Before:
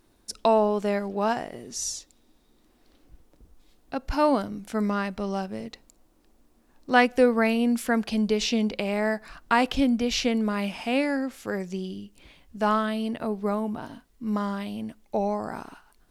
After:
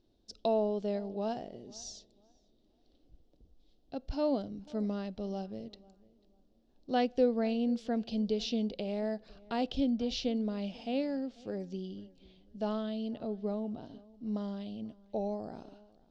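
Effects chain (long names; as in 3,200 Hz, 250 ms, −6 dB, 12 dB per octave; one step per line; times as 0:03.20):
low-pass filter 5,100 Hz 24 dB per octave
flat-topped bell 1,500 Hz −13.5 dB
feedback echo with a low-pass in the loop 492 ms, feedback 26%, low-pass 2,300 Hz, level −22.5 dB
level −7.5 dB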